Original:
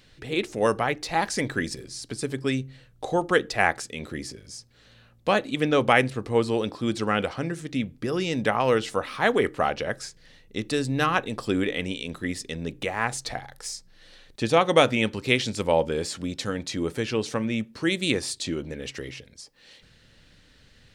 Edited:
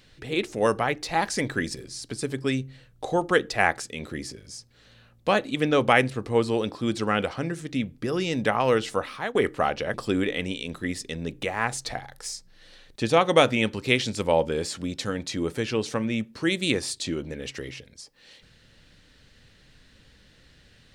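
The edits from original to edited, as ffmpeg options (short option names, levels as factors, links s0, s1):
-filter_complex "[0:a]asplit=3[s0][s1][s2];[s0]atrim=end=9.35,asetpts=PTS-STARTPTS,afade=t=out:st=9.02:d=0.33:silence=0.11885[s3];[s1]atrim=start=9.35:end=9.942,asetpts=PTS-STARTPTS,afade=t=in:d=0.004:c=hsin:silence=0.11885[s4];[s2]atrim=start=11.338[s5];[s3][s4]concat=n=2:v=0:a=1[s6];[s6][s5]acrossfade=d=0.004:c1=hsin:c2=hsin"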